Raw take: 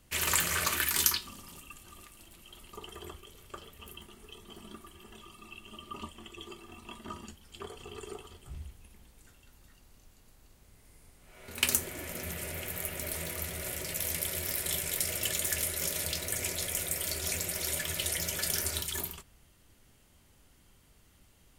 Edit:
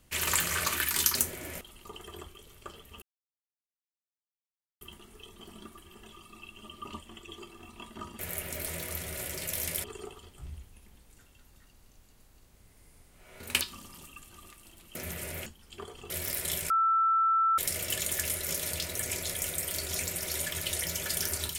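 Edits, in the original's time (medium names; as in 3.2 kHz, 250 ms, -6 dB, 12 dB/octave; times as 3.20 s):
1.15–2.49 s: swap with 11.69–12.15 s
3.90 s: insert silence 1.79 s
7.28–7.92 s: swap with 12.66–14.31 s
14.91 s: add tone 1.33 kHz -22 dBFS 0.88 s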